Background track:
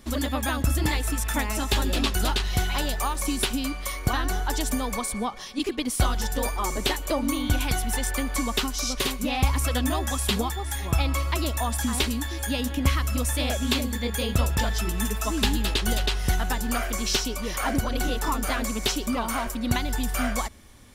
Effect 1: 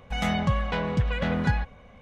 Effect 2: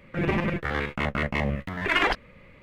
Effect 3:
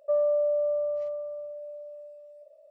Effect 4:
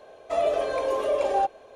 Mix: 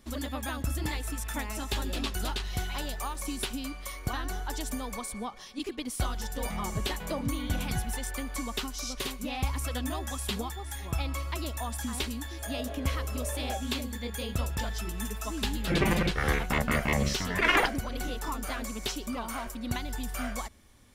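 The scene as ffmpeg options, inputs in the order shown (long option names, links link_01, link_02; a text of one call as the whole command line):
ffmpeg -i bed.wav -i cue0.wav -i cue1.wav -i cue2.wav -i cue3.wav -filter_complex "[0:a]volume=-8dB[link_01];[1:a]bass=frequency=250:gain=6,treble=frequency=4000:gain=2[link_02];[4:a]flanger=delay=18.5:depth=3:speed=1.5[link_03];[link_02]atrim=end=2.01,asetpts=PTS-STARTPTS,volume=-15.5dB,afade=type=in:duration=0.004:curve=hsin,afade=type=out:start_time=2.006:duration=0.004:curve=hsin,adelay=6280[link_04];[link_03]atrim=end=1.75,asetpts=PTS-STARTPTS,volume=-14dB,afade=type=in:duration=0.004:curve=hsin,afade=type=out:start_time=1.746:duration=0.004:curve=hsin,adelay=12120[link_05];[2:a]atrim=end=2.62,asetpts=PTS-STARTPTS,volume=-1dB,afade=type=in:duration=0.004:curve=hsin,afade=type=out:start_time=2.616:duration=0.004:curve=hsin,adelay=15530[link_06];[link_01][link_04][link_05][link_06]amix=inputs=4:normalize=0" out.wav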